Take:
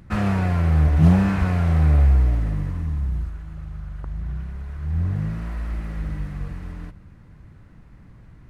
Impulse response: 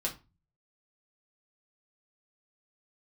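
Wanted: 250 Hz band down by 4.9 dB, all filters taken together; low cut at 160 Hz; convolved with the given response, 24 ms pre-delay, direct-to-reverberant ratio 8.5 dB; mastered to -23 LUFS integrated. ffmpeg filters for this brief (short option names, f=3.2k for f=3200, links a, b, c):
-filter_complex "[0:a]highpass=160,equalizer=f=250:t=o:g=-5,asplit=2[a][b];[1:a]atrim=start_sample=2205,adelay=24[c];[b][c]afir=irnorm=-1:irlink=0,volume=-12dB[d];[a][d]amix=inputs=2:normalize=0,volume=5dB"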